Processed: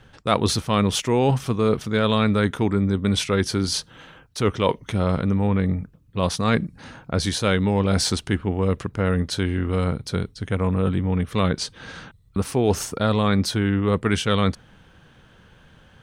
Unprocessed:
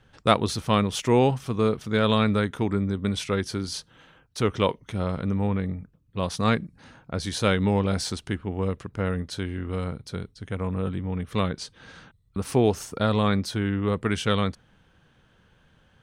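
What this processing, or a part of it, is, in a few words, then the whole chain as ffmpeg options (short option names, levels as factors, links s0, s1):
compression on the reversed sound: -af "areverse,acompressor=threshold=0.0562:ratio=5,areverse,volume=2.66"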